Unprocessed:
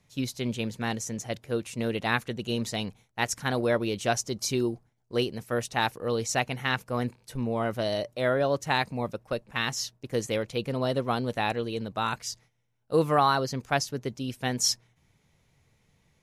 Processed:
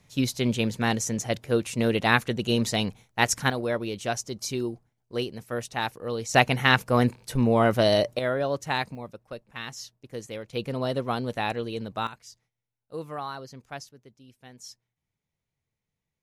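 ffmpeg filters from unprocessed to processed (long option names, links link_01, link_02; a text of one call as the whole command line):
ffmpeg -i in.wav -af "asetnsamples=nb_out_samples=441:pad=0,asendcmd='3.5 volume volume -2.5dB;6.34 volume volume 8dB;8.19 volume volume -1.5dB;8.95 volume volume -8dB;10.53 volume volume -0.5dB;12.07 volume volume -12.5dB;13.89 volume volume -19.5dB',volume=5.5dB" out.wav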